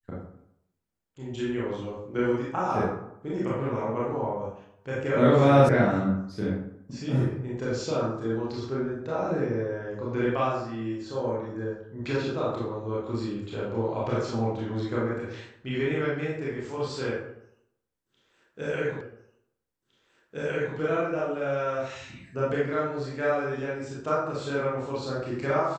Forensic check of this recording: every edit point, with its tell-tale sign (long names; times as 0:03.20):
0:05.69: cut off before it has died away
0:19.01: the same again, the last 1.76 s